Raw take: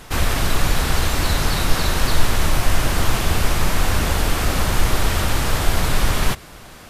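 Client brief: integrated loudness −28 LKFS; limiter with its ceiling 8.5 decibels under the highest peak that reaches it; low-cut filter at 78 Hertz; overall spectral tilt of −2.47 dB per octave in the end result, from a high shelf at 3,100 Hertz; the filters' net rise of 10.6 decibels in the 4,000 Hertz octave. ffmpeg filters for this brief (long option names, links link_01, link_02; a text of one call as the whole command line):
ffmpeg -i in.wav -af "highpass=78,highshelf=frequency=3100:gain=6,equalizer=frequency=4000:width_type=o:gain=8.5,volume=-7dB,alimiter=limit=-20.5dB:level=0:latency=1" out.wav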